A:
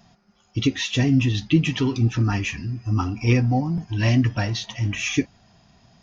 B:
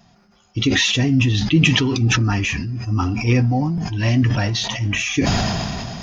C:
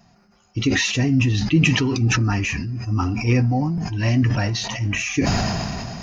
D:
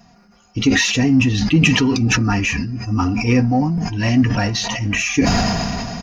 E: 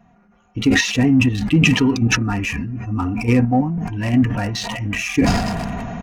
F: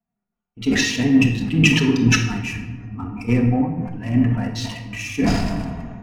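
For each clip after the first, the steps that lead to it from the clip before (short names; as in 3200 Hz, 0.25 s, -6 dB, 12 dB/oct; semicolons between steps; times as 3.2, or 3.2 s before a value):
sustainer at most 21 dB/s; gain +1 dB
bell 3400 Hz -12 dB 0.2 oct; gain -1.5 dB
comb 4.2 ms, depth 38%; in parallel at -12 dB: soft clip -20 dBFS, distortion -10 dB; on the sum: gain +2.5 dB
Wiener smoothing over 9 samples; in parallel at +1 dB: level quantiser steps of 16 dB; on the sum: gain -5 dB
shoebox room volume 1600 m³, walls mixed, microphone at 1.5 m; three-band expander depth 70%; gain -5 dB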